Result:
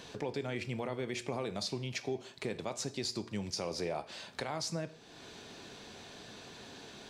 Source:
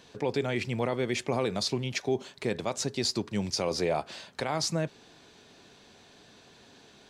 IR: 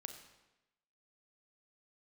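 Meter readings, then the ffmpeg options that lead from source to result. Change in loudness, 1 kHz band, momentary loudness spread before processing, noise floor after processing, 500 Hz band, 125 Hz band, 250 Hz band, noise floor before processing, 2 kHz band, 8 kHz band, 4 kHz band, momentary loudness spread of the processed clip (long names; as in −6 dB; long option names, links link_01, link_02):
−8.5 dB, −7.5 dB, 5 LU, −54 dBFS, −8.0 dB, −7.0 dB, −7.5 dB, −57 dBFS, −6.5 dB, −6.5 dB, −6.5 dB, 12 LU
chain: -filter_complex "[0:a]acompressor=threshold=-51dB:ratio=2,asplit=2[link_01][link_02];[1:a]atrim=start_sample=2205,asetrate=83790,aresample=44100[link_03];[link_02][link_03]afir=irnorm=-1:irlink=0,volume=9.5dB[link_04];[link_01][link_04]amix=inputs=2:normalize=0"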